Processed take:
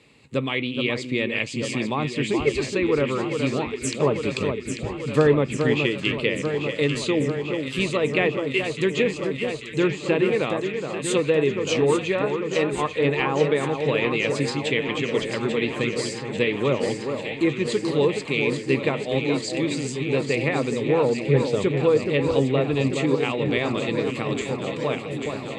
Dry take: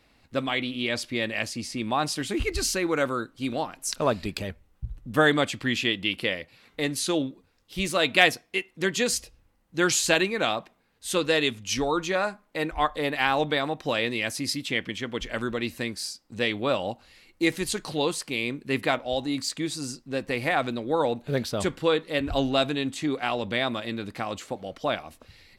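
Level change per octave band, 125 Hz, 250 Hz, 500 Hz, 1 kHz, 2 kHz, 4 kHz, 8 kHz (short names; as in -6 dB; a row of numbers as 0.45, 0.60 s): +9.0, +5.0, +6.5, -1.0, +0.5, -1.5, -4.0 dB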